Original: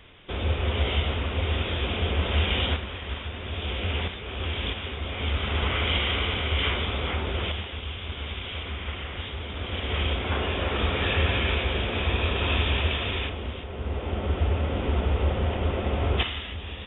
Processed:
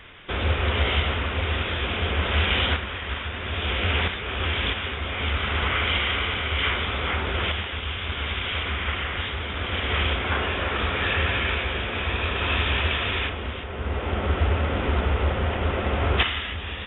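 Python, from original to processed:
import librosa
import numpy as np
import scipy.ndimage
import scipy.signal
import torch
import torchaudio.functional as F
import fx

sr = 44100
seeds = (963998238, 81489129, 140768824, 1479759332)

y = fx.peak_eq(x, sr, hz=1600.0, db=8.0, octaves=1.4)
y = fx.rider(y, sr, range_db=4, speed_s=2.0)
y = fx.doppler_dist(y, sr, depth_ms=0.13)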